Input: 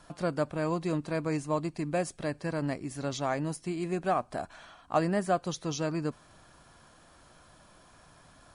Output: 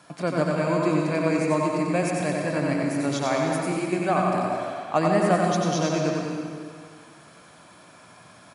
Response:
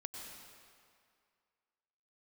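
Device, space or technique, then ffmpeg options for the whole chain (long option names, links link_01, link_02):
PA in a hall: -filter_complex "[0:a]highpass=frequency=110:width=0.5412,highpass=frequency=110:width=1.3066,equalizer=frequency=2300:width_type=o:width=0.2:gain=7,aecho=1:1:92:0.631[link_01];[1:a]atrim=start_sample=2205[link_02];[link_01][link_02]afir=irnorm=-1:irlink=0,volume=8.5dB"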